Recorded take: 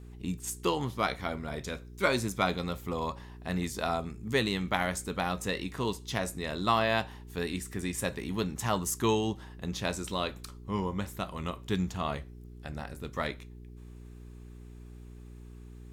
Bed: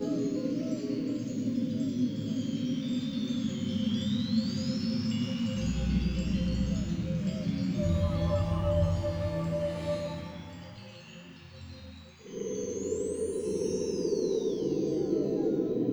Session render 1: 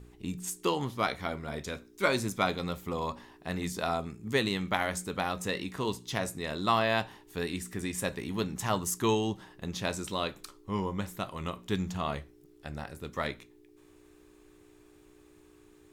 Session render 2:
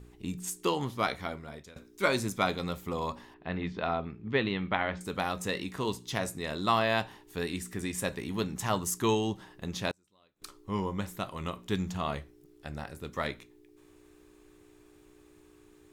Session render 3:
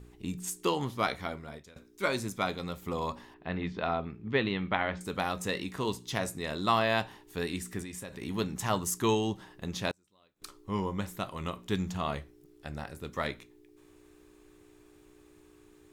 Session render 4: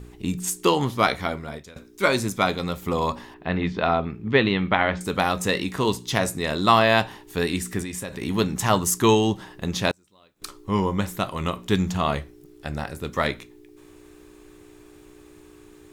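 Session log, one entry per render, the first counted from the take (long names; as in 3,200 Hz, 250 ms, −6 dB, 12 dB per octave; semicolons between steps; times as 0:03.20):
hum removal 60 Hz, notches 4
0:01.13–0:01.76: fade out, to −19.5 dB; 0:03.34–0:05.01: low-pass filter 3,400 Hz 24 dB per octave; 0:09.91–0:10.42: gate with flip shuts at −36 dBFS, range −34 dB
0:01.58–0:02.82: clip gain −3 dB; 0:07.82–0:08.22: downward compressor, threshold −38 dBFS
level +9.5 dB; brickwall limiter −3 dBFS, peak gain reduction 2 dB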